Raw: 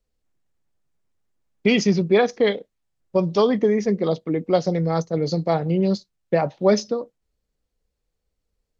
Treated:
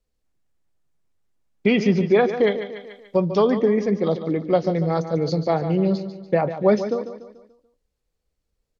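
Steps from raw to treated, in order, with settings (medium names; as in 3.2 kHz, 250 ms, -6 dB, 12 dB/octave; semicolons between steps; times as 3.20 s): low-pass that closes with the level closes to 2.7 kHz, closed at -14.5 dBFS; feedback delay 145 ms, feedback 44%, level -11 dB; 1.70–3.30 s: tape noise reduction on one side only encoder only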